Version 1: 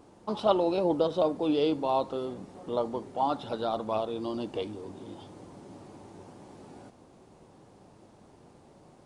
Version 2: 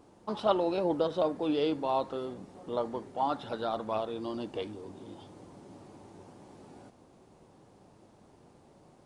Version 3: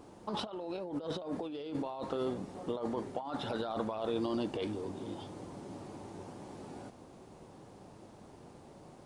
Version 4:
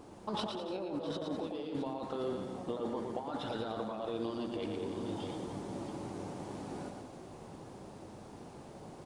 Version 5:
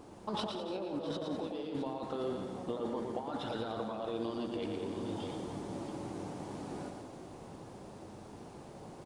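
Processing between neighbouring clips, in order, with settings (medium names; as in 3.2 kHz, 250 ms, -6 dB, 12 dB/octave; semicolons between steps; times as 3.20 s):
dynamic bell 1.7 kHz, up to +7 dB, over -51 dBFS, Q 1.9; trim -3 dB
compressor with a negative ratio -37 dBFS, ratio -1
multi-tap echo 114/201/290/325/664 ms -5/-11/-14/-18.5/-13.5 dB; gain riding within 4 dB 0.5 s; trim -1.5 dB
feedback delay 167 ms, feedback 60%, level -15.5 dB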